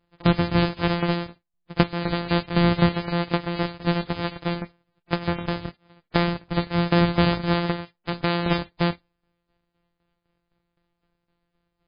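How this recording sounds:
a buzz of ramps at a fixed pitch in blocks of 256 samples
tremolo saw down 3.9 Hz, depth 75%
MP3

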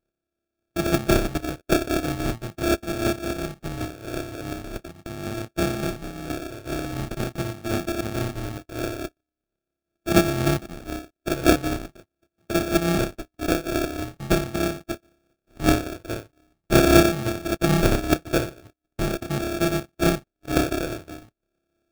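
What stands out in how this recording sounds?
a buzz of ramps at a fixed pitch in blocks of 128 samples
phaser sweep stages 6, 0.42 Hz, lowest notch 230–1,300 Hz
aliases and images of a low sample rate 1,000 Hz, jitter 0%
amplitude modulation by smooth noise

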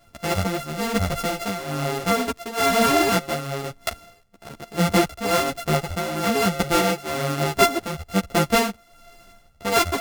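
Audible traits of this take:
a buzz of ramps at a fixed pitch in blocks of 64 samples
tremolo triangle 1.1 Hz, depth 75%
a shimmering, thickened sound

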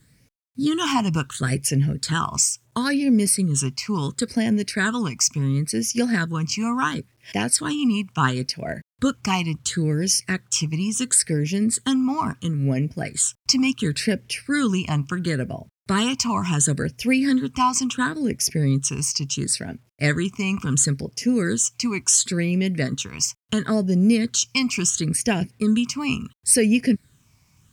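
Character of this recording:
phaser sweep stages 8, 0.72 Hz, lowest notch 490–1,200 Hz
a quantiser's noise floor 12 bits, dither none
Opus

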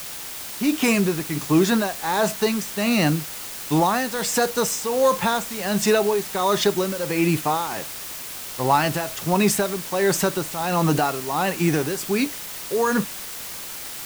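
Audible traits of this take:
tremolo triangle 1.4 Hz, depth 80%
a quantiser's noise floor 6 bits, dither triangular

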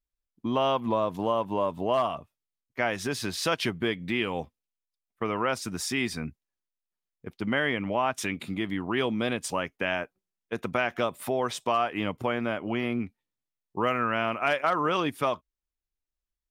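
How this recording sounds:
background noise floor −89 dBFS
spectral slope −4.5 dB per octave

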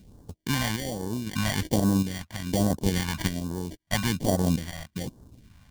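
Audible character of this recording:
a buzz of ramps at a fixed pitch in blocks of 8 samples
chopped level 0.79 Hz, depth 60%, duty 60%
aliases and images of a low sample rate 1,300 Hz, jitter 0%
phaser sweep stages 2, 1.2 Hz, lowest notch 380–2,300 Hz

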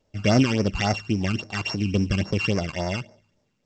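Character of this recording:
a buzz of ramps at a fixed pitch in blocks of 16 samples
phaser sweep stages 12, 3.6 Hz, lowest notch 580–3,300 Hz
mu-law

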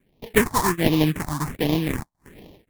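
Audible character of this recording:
aliases and images of a low sample rate 1,400 Hz, jitter 20%
phaser sweep stages 4, 1.3 Hz, lowest notch 420–1,500 Hz

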